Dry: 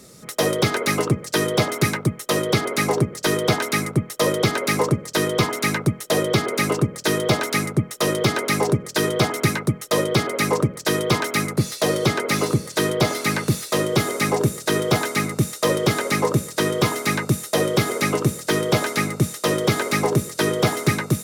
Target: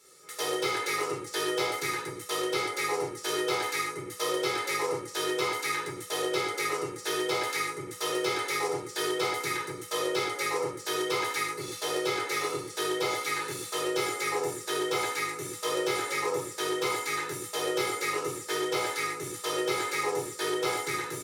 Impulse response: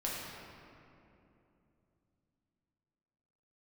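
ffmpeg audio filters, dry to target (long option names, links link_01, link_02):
-filter_complex "[0:a]highpass=frequency=850:poles=1,aecho=1:1:2.3:0.83[link_01];[1:a]atrim=start_sample=2205,afade=type=out:start_time=0.34:duration=0.01,atrim=end_sample=15435,asetrate=88200,aresample=44100[link_02];[link_01][link_02]afir=irnorm=-1:irlink=0,volume=-6dB"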